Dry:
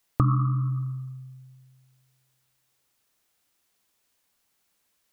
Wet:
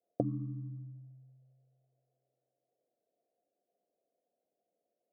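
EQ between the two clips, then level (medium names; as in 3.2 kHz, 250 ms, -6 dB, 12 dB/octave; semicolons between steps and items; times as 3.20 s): high-pass 500 Hz 12 dB/octave; rippled Chebyshev low-pass 720 Hz, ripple 3 dB; +8.0 dB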